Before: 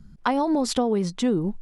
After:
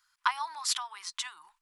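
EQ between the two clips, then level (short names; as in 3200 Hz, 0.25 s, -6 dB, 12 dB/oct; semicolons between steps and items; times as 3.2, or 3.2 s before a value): elliptic high-pass 1000 Hz, stop band 50 dB; high shelf 9900 Hz +5.5 dB; 0.0 dB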